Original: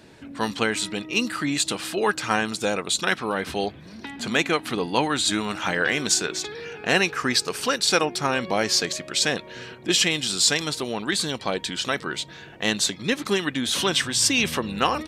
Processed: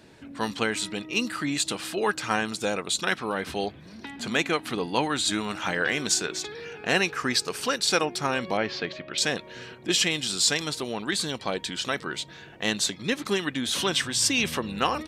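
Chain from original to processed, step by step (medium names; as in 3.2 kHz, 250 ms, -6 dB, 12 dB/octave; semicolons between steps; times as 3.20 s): 8.57–9.18 s: low-pass 3.5 kHz 24 dB/octave; trim -3 dB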